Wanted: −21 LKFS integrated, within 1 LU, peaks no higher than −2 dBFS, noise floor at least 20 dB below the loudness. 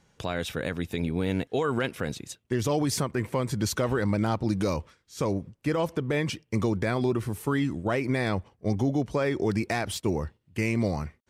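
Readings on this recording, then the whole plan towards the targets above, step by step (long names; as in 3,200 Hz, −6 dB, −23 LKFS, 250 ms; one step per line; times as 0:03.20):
integrated loudness −28.5 LKFS; sample peak −16.5 dBFS; target loudness −21.0 LKFS
→ level +7.5 dB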